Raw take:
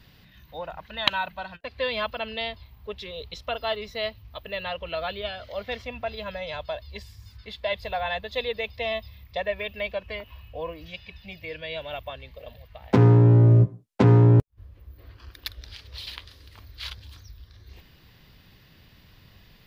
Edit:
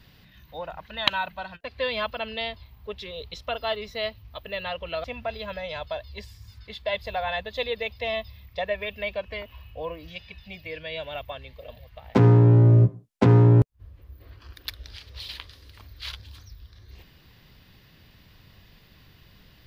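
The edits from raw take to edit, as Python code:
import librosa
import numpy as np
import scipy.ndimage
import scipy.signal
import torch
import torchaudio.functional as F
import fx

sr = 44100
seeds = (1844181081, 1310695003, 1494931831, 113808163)

y = fx.edit(x, sr, fx.cut(start_s=5.04, length_s=0.78), tone=tone)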